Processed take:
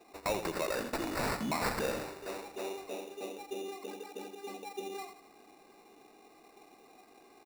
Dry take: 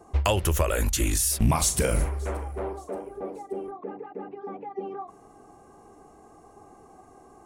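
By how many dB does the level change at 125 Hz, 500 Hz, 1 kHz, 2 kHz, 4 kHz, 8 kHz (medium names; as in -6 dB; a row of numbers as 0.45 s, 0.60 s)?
-20.0 dB, -6.5 dB, -6.0 dB, -3.5 dB, -8.5 dB, -18.0 dB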